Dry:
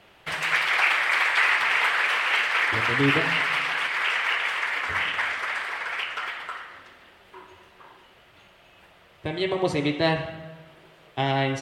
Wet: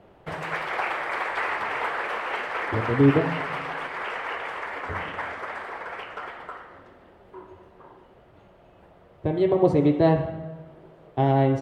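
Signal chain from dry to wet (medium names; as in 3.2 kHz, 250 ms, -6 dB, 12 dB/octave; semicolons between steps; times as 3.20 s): FFT filter 480 Hz 0 dB, 820 Hz -4 dB, 2.6 kHz -19 dB; trim +6 dB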